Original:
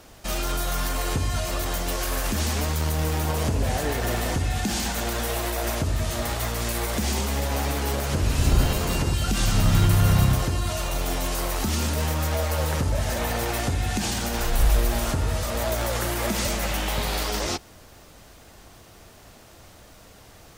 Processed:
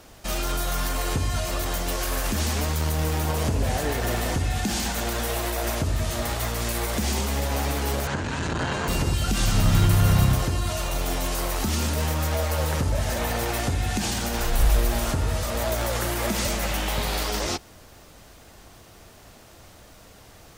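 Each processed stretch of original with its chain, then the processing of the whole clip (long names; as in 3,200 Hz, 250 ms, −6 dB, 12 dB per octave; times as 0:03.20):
0:08.07–0:08.88: loudspeaker in its box 110–7,200 Hz, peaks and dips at 930 Hz +7 dB, 1,600 Hz +10 dB, 5,200 Hz −6 dB + saturating transformer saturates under 440 Hz
whole clip: no processing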